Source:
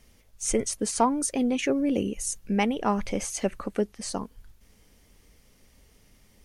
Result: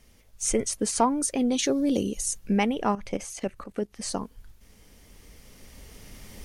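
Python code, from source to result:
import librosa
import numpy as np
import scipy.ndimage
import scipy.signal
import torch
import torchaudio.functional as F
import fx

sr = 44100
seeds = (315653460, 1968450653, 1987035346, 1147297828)

y = fx.recorder_agc(x, sr, target_db=-16.0, rise_db_per_s=6.5, max_gain_db=30)
y = fx.high_shelf_res(y, sr, hz=3100.0, db=7.0, q=3.0, at=(1.51, 2.21))
y = fx.level_steps(y, sr, step_db=13, at=(2.92, 3.93))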